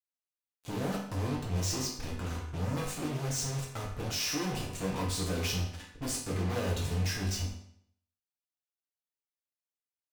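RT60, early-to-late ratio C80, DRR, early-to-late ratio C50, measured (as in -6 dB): 0.65 s, 8.0 dB, -3.5 dB, 4.5 dB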